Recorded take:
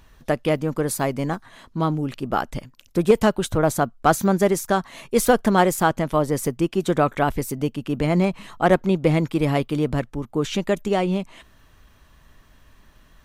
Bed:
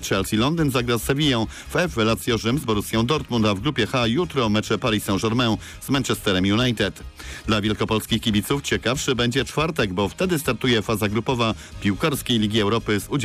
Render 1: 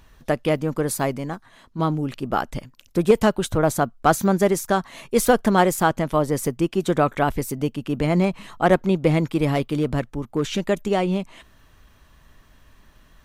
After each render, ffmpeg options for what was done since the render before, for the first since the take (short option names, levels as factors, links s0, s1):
-filter_complex "[0:a]asettb=1/sr,asplit=3[s0][s1][s2];[s0]atrim=end=9.524[s3];[s1]atrim=start=9.52:end=10.62,asetpts=PTS-STARTPTS,afade=t=in:d=0.004:c=qsin,afade=t=out:st=1.096:d=0.004:c=qsin,asoftclip=type=hard:threshold=0.188[s4];[s2]atrim=start=10.616[s5];[s3][s4]acrossfade=d=0.004:c1=hsin:c2=qsin[s6];[s6][s5]acrossfade=d=0.004:c1=qsin:c2=hsin,asplit=3[s7][s8][s9];[s7]atrim=end=1.182[s10];[s8]atrim=start=1.178:end=1.792,asetpts=PTS-STARTPTS,volume=0.596[s11];[s9]atrim=start=1.788[s12];[s10][s11]acrossfade=d=0.004:c1=hsin:c2=hsin[s13];[s13][s12]acrossfade=d=0.004:c1=hsin:c2=hsin"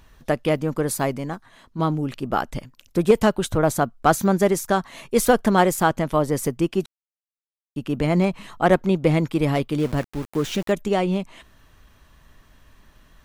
-filter_complex "[0:a]asplit=3[s0][s1][s2];[s0]afade=t=out:st=9.78:d=0.02[s3];[s1]aeval=exprs='val(0)*gte(abs(val(0)),0.0211)':c=same,afade=t=in:st=9.78:d=0.02,afade=t=out:st=10.71:d=0.02[s4];[s2]afade=t=in:st=10.71:d=0.02[s5];[s3][s4][s5]amix=inputs=3:normalize=0,asplit=3[s6][s7][s8];[s6]atrim=end=6.86,asetpts=PTS-STARTPTS,afade=t=out:st=6.856:d=0.004:c=hsin[s9];[s7]atrim=start=6.86:end=7.76,asetpts=PTS-STARTPTS,volume=0[s10];[s8]atrim=start=7.76,asetpts=PTS-STARTPTS,afade=t=in:d=0.004:c=hsin[s11];[s9][s10][s11]concat=n=3:v=0:a=1"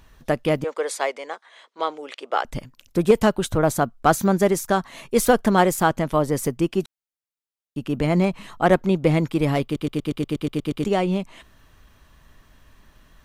-filter_complex "[0:a]asettb=1/sr,asplit=3[s0][s1][s2];[s0]atrim=end=0.644[s3];[s1]atrim=start=0.64:end=2.45,asetpts=PTS-STARTPTS,afade=t=in:d=0.004:c=qsin,afade=t=out:st=1.806:d=0.004:c=qsin,highpass=f=460:w=0.5412,highpass=f=460:w=1.3066,equalizer=f=480:t=q:w=4:g=4,equalizer=f=2100:t=q:w=4:g=6,equalizer=f=3400:t=q:w=4:g=6,lowpass=f=8900:w=0.5412,lowpass=f=8900:w=1.3066[s4];[s2]atrim=start=2.446[s5];[s3][s4]acrossfade=d=0.004:c1=hsin:c2=qsin[s6];[s6][s5]acrossfade=d=0.004:c1=qsin:c2=hsin,asplit=11[s7][s8][s9][s10][s11][s12][s13][s14][s15][s16][s17];[s7]atrim=end=9.762[s18];[s8]atrim=start=9.638:end=9.762[s19];[s9]atrim=start=9.638:end=9.762[s20];[s10]atrim=start=9.638:end=9.762[s21];[s11]atrim=start=9.638:end=9.762[s22];[s12]atrim=start=9.638:end=9.762[s23];[s13]atrim=start=9.638:end=9.762[s24];[s14]atrim=start=9.638:end=9.762[s25];[s15]atrim=start=9.638:end=9.762[s26];[s16]atrim=start=9.638:end=9.762[s27];[s17]atrim=start=10.838[s28];[s18][s19]acrossfade=d=0.004:c1=hsin:c2=hsin[s29];[s29][s20]acrossfade=d=0.004:c1=hsin:c2=hsin[s30];[s30][s21]acrossfade=d=0.004:c1=hsin:c2=hsin[s31];[s31][s22]acrossfade=d=0.004:c1=hsin:c2=hsin[s32];[s32][s23]acrossfade=d=0.004:c1=hsin:c2=hsin[s33];[s33][s24]acrossfade=d=0.004:c1=hsin:c2=hsin[s34];[s34][s25]acrossfade=d=0.004:c1=hsin:c2=hsin[s35];[s35][s26]acrossfade=d=0.004:c1=hsin:c2=hsin[s36];[s36][s27]acrossfade=d=0.004:c1=hsin:c2=hsin[s37];[s37][s28]acrossfade=d=0.004:c1=hsin:c2=hsin"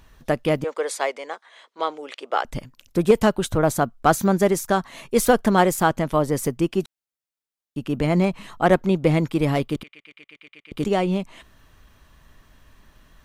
-filter_complex "[0:a]asettb=1/sr,asplit=3[s0][s1][s2];[s0]atrim=end=9.834[s3];[s1]atrim=start=9.83:end=10.72,asetpts=PTS-STARTPTS,afade=t=in:d=0.004:c=qsin,afade=t=out:st=0.886:d=0.004:c=qsin,bandpass=f=2200:t=q:w=4.5[s4];[s2]atrim=start=10.716[s5];[s3][s4]acrossfade=d=0.004:c1=hsin:c2=qsin[s6];[s6][s5]acrossfade=d=0.004:c1=qsin:c2=hsin"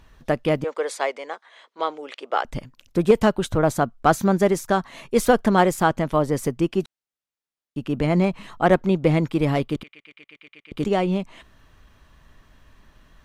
-af "highshelf=f=7800:g=-8.5"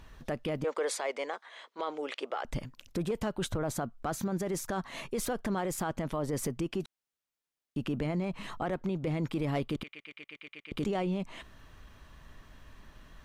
-af "acompressor=threshold=0.0631:ratio=3,alimiter=limit=0.0631:level=0:latency=1:release=16"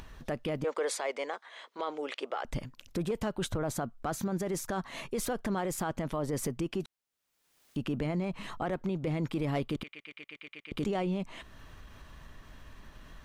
-af "acompressor=mode=upward:threshold=0.00708:ratio=2.5"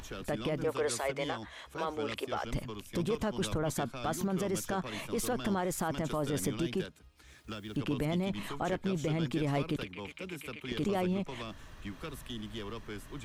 -filter_complex "[1:a]volume=0.0841[s0];[0:a][s0]amix=inputs=2:normalize=0"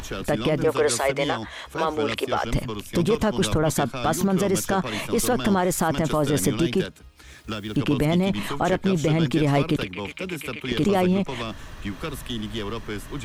-af "volume=3.55"